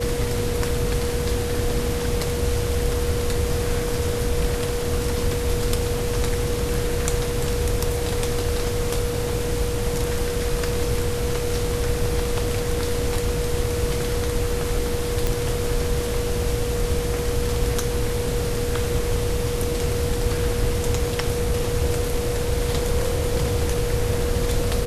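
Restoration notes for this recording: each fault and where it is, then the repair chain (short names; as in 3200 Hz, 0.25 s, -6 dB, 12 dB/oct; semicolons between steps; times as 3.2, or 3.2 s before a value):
tone 480 Hz -26 dBFS
15.27 pop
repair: de-click; notch 480 Hz, Q 30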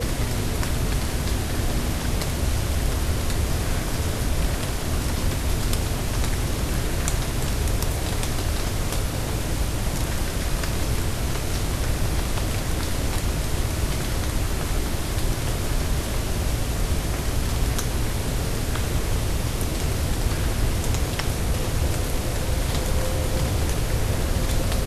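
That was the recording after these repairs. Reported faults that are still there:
none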